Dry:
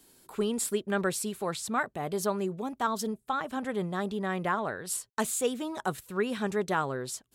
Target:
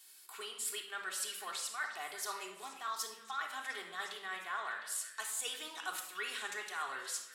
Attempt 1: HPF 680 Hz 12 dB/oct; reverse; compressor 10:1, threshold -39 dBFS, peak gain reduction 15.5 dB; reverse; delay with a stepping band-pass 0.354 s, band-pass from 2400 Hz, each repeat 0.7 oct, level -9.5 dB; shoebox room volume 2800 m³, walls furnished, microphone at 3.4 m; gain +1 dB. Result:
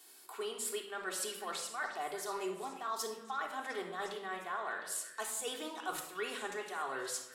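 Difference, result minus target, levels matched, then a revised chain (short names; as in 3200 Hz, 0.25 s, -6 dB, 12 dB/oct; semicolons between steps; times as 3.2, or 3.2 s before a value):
500 Hz band +9.5 dB
HPF 1600 Hz 12 dB/oct; reverse; compressor 10:1, threshold -39 dBFS, peak gain reduction 11.5 dB; reverse; delay with a stepping band-pass 0.354 s, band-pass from 2400 Hz, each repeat 0.7 oct, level -9.5 dB; shoebox room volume 2800 m³, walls furnished, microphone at 3.4 m; gain +1 dB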